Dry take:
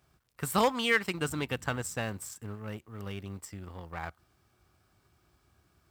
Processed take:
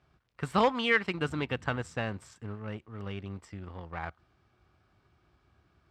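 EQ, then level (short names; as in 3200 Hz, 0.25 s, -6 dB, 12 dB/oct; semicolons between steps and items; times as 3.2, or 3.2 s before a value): LPF 3600 Hz 12 dB/oct; +1.0 dB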